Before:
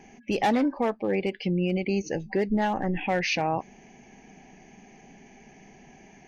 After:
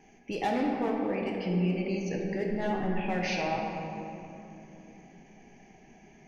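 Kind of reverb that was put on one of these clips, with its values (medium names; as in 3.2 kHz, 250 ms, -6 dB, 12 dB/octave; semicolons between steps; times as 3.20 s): simulated room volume 140 m³, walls hard, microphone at 0.48 m; trim -8 dB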